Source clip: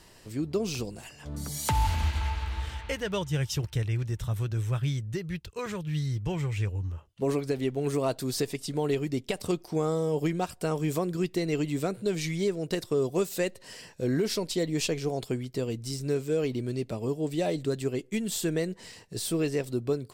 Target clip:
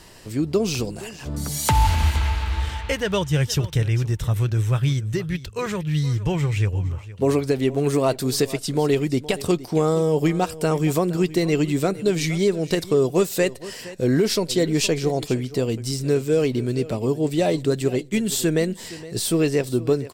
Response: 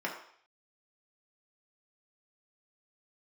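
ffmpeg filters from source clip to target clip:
-af "aecho=1:1:467:0.141,volume=8dB"

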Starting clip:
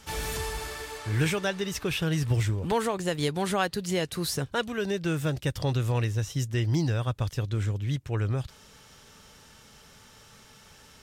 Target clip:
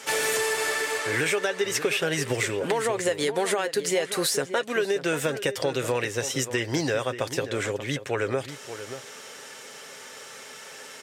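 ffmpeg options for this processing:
ffmpeg -i in.wav -filter_complex "[0:a]highpass=290,aecho=1:1:7.5:0.34,alimiter=limit=-21.5dB:level=0:latency=1:release=207,equalizer=frequency=500:width_type=o:width=1:gain=9,equalizer=frequency=2000:width_type=o:width=1:gain=8,equalizer=frequency=8000:width_type=o:width=1:gain=7,acompressor=threshold=-27dB:ratio=6,asplit=2[link_01][link_02];[link_02]adelay=583.1,volume=-11dB,highshelf=frequency=4000:gain=-13.1[link_03];[link_01][link_03]amix=inputs=2:normalize=0,volume=5.5dB" out.wav

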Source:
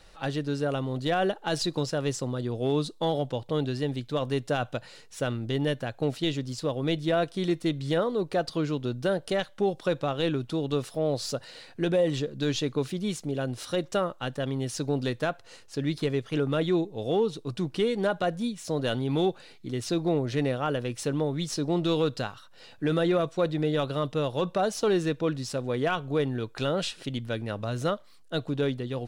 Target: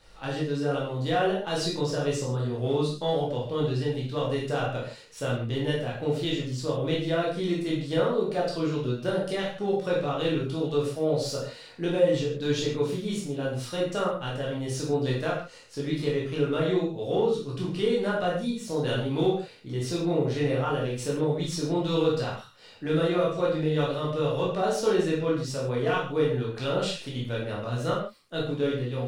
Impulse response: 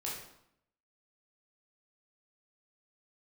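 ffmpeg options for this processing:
-filter_complex "[1:a]atrim=start_sample=2205,afade=type=out:start_time=0.24:duration=0.01,atrim=end_sample=11025,asetrate=48510,aresample=44100[link_01];[0:a][link_01]afir=irnorm=-1:irlink=0"

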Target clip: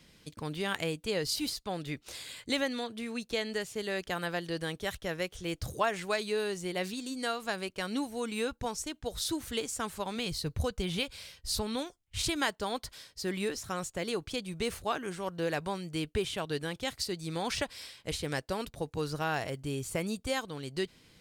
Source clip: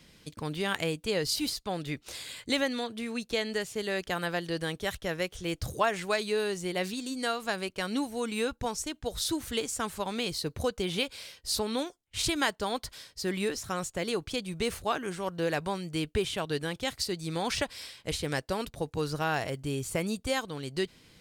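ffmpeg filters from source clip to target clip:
ffmpeg -i in.wav -filter_complex "[0:a]asplit=3[link_01][link_02][link_03];[link_01]afade=type=out:start_time=10.15:duration=0.02[link_04];[link_02]asubboost=boost=3:cutoff=160,afade=type=in:start_time=10.15:duration=0.02,afade=type=out:start_time=12.21:duration=0.02[link_05];[link_03]afade=type=in:start_time=12.21:duration=0.02[link_06];[link_04][link_05][link_06]amix=inputs=3:normalize=0,volume=-2.5dB" out.wav

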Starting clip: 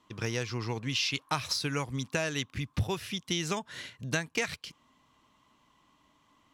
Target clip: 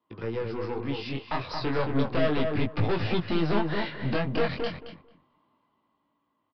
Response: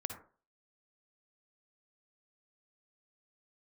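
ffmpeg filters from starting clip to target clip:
-filter_complex "[0:a]highpass=frequency=520:poles=1,agate=range=-13dB:threshold=-55dB:ratio=16:detection=peak,tiltshelf=frequency=1200:gain=9.5,acrossover=split=830|1200[link_01][link_02][link_03];[link_03]alimiter=level_in=10dB:limit=-24dB:level=0:latency=1:release=209,volume=-10dB[link_04];[link_01][link_02][link_04]amix=inputs=3:normalize=0,dynaudnorm=framelen=290:gausssize=11:maxgain=11.5dB,aeval=exprs='(tanh(22.4*val(0)+0.45)-tanh(0.45))/22.4':channel_layout=same,flanger=delay=17.5:depth=5.7:speed=0.33,asplit=2[link_05][link_06];[link_06]adelay=222,lowpass=frequency=1600:poles=1,volume=-3.5dB,asplit=2[link_07][link_08];[link_08]adelay=222,lowpass=frequency=1600:poles=1,volume=0.2,asplit=2[link_09][link_10];[link_10]adelay=222,lowpass=frequency=1600:poles=1,volume=0.2[link_11];[link_07][link_09][link_11]amix=inputs=3:normalize=0[link_12];[link_05][link_12]amix=inputs=2:normalize=0,aresample=11025,aresample=44100,volume=6dB"

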